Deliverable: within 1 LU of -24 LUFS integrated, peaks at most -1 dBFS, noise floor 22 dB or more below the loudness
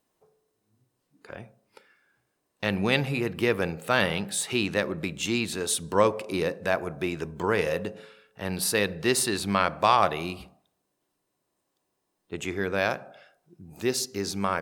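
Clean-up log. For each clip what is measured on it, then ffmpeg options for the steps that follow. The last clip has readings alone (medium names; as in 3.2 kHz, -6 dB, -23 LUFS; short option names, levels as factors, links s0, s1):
loudness -27.0 LUFS; peak level -6.5 dBFS; loudness target -24.0 LUFS
-> -af "volume=1.41"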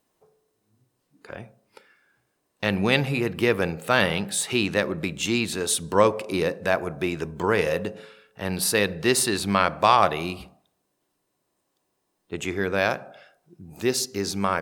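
loudness -24.0 LUFS; peak level -3.5 dBFS; noise floor -76 dBFS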